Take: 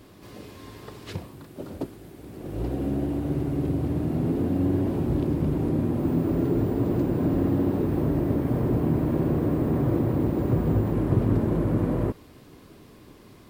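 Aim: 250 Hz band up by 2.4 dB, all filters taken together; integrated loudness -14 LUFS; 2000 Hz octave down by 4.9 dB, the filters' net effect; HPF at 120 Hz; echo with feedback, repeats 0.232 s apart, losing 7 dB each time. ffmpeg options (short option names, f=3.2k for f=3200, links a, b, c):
-af "highpass=120,equalizer=f=250:t=o:g=3.5,equalizer=f=2k:t=o:g=-6.5,aecho=1:1:232|464|696|928|1160:0.447|0.201|0.0905|0.0407|0.0183,volume=9dB"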